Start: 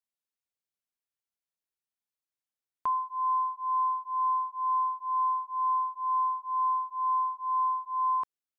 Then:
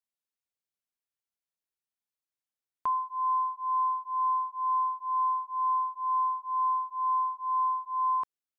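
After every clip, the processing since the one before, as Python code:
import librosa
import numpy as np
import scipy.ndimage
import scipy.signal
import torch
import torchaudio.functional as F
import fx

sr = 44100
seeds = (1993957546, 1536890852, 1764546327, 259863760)

y = x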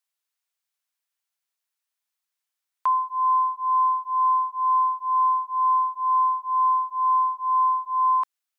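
y = scipy.signal.sosfilt(scipy.signal.butter(2, 840.0, 'highpass', fs=sr, output='sos'), x)
y = y * librosa.db_to_amplitude(8.5)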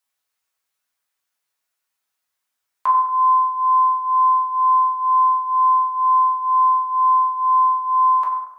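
y = fx.rev_fdn(x, sr, rt60_s=0.98, lf_ratio=0.9, hf_ratio=0.45, size_ms=73.0, drr_db=-4.0)
y = y * librosa.db_to_amplitude(3.0)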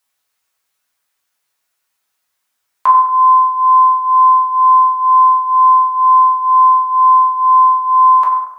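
y = fx.rider(x, sr, range_db=10, speed_s=0.5)
y = y * librosa.db_to_amplitude(7.0)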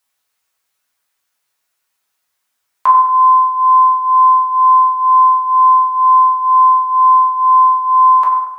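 y = fx.echo_feedback(x, sr, ms=106, feedback_pct=59, wet_db=-20)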